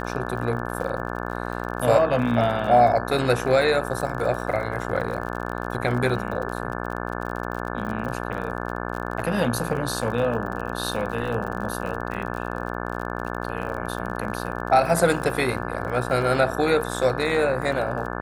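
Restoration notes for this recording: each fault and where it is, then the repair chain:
buzz 60 Hz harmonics 29 -30 dBFS
crackle 44/s -31 dBFS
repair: de-click; de-hum 60 Hz, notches 29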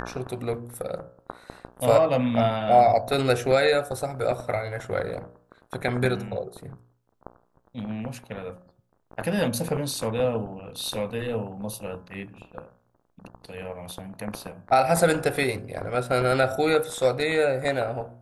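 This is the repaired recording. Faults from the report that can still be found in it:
none

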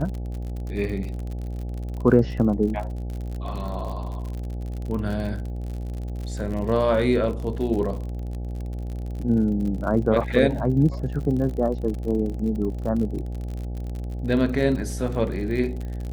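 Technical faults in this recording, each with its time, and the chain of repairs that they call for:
buzz 60 Hz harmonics 14 -30 dBFS
crackle 50/s -31 dBFS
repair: de-click; de-hum 60 Hz, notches 14

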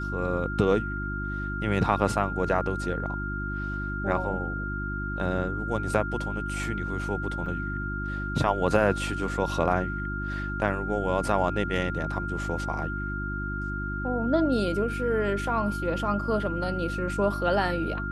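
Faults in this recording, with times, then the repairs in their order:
hum 50 Hz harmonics 7 -33 dBFS
tone 1400 Hz -33 dBFS
7.46 gap 4.1 ms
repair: de-hum 50 Hz, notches 7; notch 1400 Hz, Q 30; interpolate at 7.46, 4.1 ms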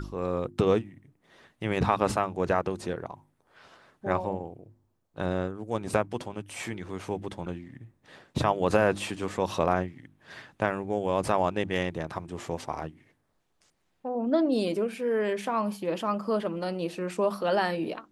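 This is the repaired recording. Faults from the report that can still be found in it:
none

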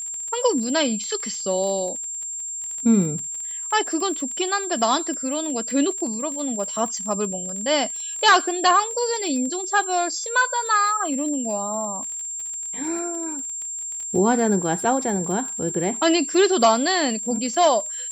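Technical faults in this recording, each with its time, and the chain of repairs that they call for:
crackle 32/s -30 dBFS
tone 7400 Hz -28 dBFS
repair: de-click; notch 7400 Hz, Q 30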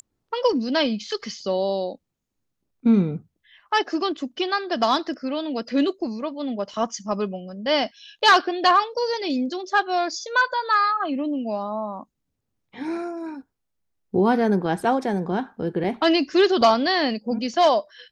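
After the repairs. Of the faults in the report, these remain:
none

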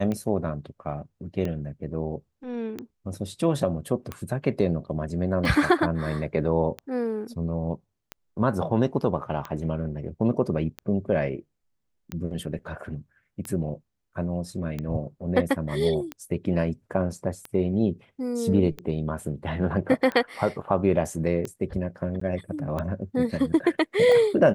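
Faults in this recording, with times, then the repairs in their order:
tick 45 rpm -18 dBFS
22.2–22.21 gap 14 ms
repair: de-click; interpolate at 22.2, 14 ms

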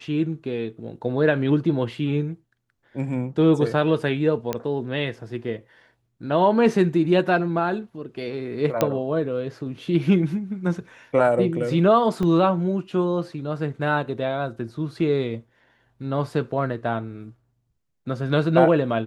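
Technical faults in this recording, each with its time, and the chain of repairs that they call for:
4.53 pop -11 dBFS
8.81 pop -6 dBFS
12.23 gap 3 ms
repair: de-click; interpolate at 12.23, 3 ms

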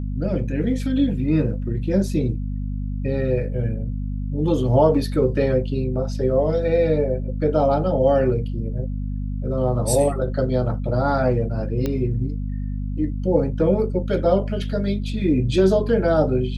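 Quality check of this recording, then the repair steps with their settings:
hum 50 Hz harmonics 5 -26 dBFS
11.86 pop -12 dBFS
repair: de-click; de-hum 50 Hz, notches 5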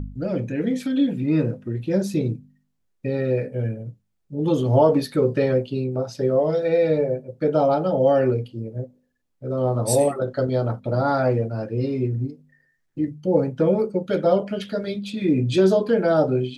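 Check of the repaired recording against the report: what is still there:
none

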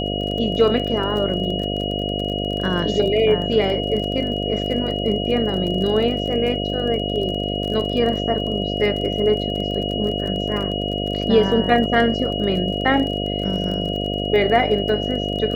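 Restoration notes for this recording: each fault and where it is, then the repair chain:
buzz 50 Hz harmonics 14 -25 dBFS
crackle 29/s -27 dBFS
tone 2900 Hz -27 dBFS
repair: de-click; notch 2900 Hz, Q 30; de-hum 50 Hz, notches 14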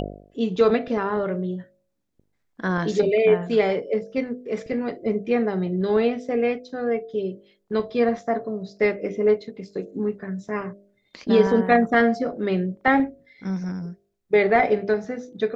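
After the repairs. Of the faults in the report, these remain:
none

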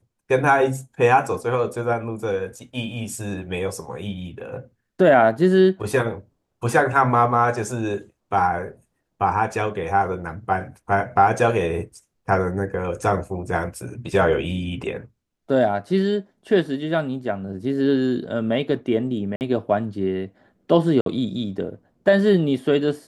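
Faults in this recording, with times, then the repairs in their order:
19.36–19.41 gap 49 ms
21.01–21.06 gap 52 ms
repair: interpolate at 19.36, 49 ms; interpolate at 21.01, 52 ms

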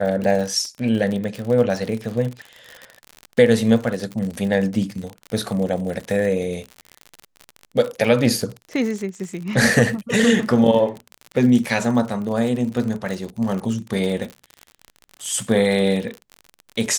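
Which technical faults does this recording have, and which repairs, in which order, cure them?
crackle 57/s -26 dBFS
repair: de-click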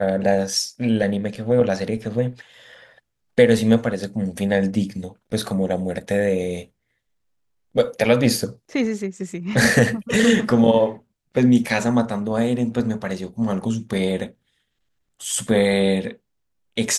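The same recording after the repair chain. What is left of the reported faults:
none

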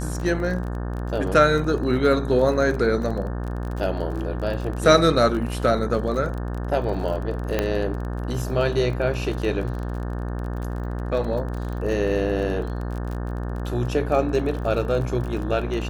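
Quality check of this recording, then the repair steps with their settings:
buzz 60 Hz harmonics 30 -28 dBFS
crackle 29/s -30 dBFS
7.59 pop -8 dBFS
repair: de-click; de-hum 60 Hz, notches 30

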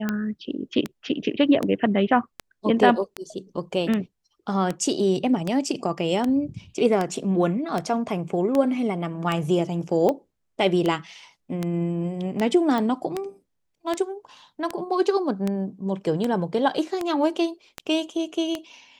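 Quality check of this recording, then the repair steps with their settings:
tick 78 rpm -12 dBFS
12.78 pop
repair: de-click

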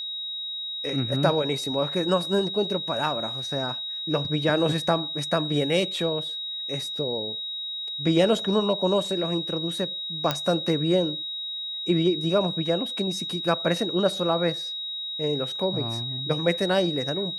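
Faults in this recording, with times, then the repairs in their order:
tone 3800 Hz -30 dBFS
10.31 pop -9 dBFS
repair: de-click; notch 3800 Hz, Q 30

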